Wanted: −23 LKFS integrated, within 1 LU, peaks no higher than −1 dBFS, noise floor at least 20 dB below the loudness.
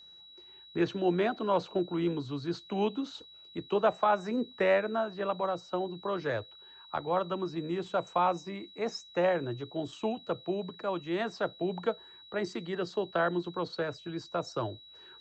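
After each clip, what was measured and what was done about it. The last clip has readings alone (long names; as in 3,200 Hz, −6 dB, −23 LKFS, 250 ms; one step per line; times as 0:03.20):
interfering tone 3,900 Hz; level of the tone −51 dBFS; integrated loudness −32.5 LKFS; sample peak −15.0 dBFS; target loudness −23.0 LKFS
→ notch filter 3,900 Hz, Q 30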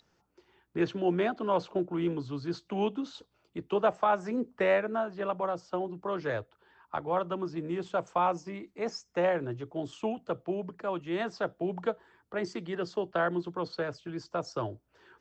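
interfering tone none found; integrated loudness −32.5 LKFS; sample peak −15.0 dBFS; target loudness −23.0 LKFS
→ level +9.5 dB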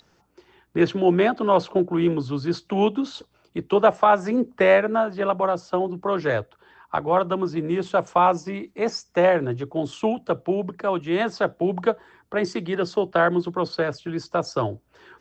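integrated loudness −23.0 LKFS; sample peak −5.5 dBFS; background noise floor −64 dBFS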